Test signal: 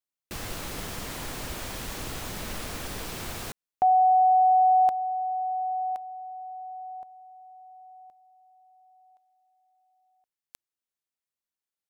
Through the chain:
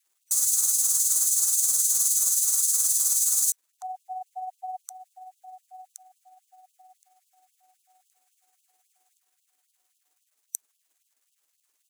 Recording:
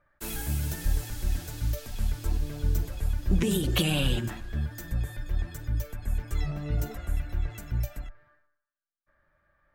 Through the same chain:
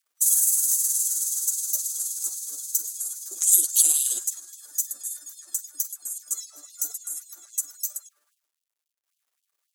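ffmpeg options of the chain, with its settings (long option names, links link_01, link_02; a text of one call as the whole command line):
ffmpeg -i in.wav -af "superequalizer=10b=2.24:15b=3.55:16b=2.51,aexciter=amount=13:drive=8.4:freq=4200,acrusher=bits=8:mix=0:aa=0.000001,tremolo=f=19:d=0.43,afftfilt=real='re*gte(b*sr/1024,230*pow(2700/230,0.5+0.5*sin(2*PI*3.7*pts/sr)))':imag='im*gte(b*sr/1024,230*pow(2700/230,0.5+0.5*sin(2*PI*3.7*pts/sr)))':win_size=1024:overlap=0.75,volume=-13dB" out.wav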